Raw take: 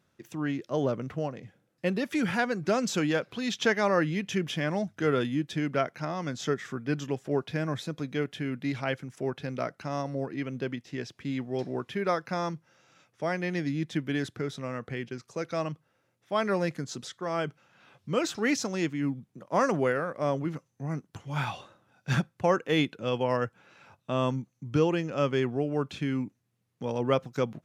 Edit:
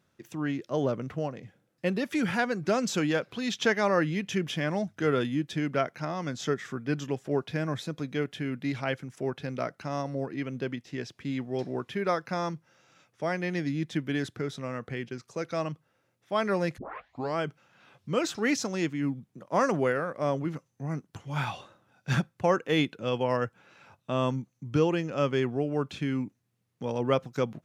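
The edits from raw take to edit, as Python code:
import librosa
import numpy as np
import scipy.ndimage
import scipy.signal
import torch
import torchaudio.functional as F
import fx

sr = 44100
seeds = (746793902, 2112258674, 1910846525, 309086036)

y = fx.edit(x, sr, fx.tape_start(start_s=16.78, length_s=0.59), tone=tone)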